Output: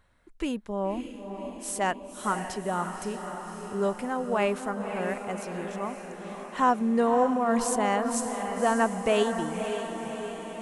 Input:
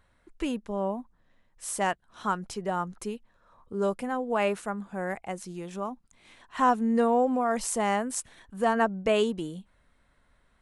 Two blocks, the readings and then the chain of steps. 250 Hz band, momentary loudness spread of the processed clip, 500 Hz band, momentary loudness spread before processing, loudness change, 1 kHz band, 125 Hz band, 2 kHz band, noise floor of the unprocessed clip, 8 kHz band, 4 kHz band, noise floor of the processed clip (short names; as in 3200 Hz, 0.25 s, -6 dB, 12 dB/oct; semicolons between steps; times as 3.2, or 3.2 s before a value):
+1.5 dB, 12 LU, +1.0 dB, 14 LU, +0.5 dB, +1.0 dB, +1.0 dB, +1.0 dB, -67 dBFS, +1.0 dB, +1.0 dB, -44 dBFS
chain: diffused feedback echo 0.56 s, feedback 63%, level -7.5 dB